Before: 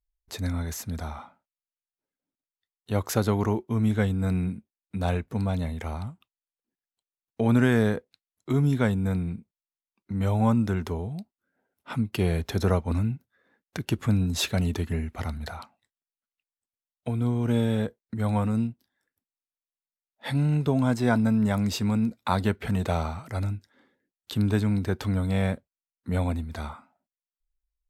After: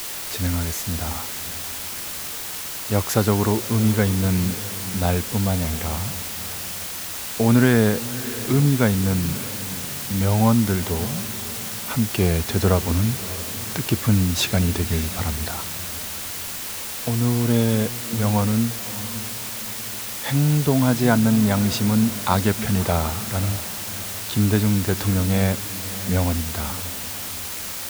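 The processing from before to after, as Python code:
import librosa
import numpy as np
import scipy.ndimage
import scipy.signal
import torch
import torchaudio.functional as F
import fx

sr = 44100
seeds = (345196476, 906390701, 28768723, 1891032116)

y = fx.echo_diffused(x, sr, ms=599, feedback_pct=43, wet_db=-15)
y = fx.quant_dither(y, sr, seeds[0], bits=6, dither='triangular')
y = y * librosa.db_to_amplitude(5.0)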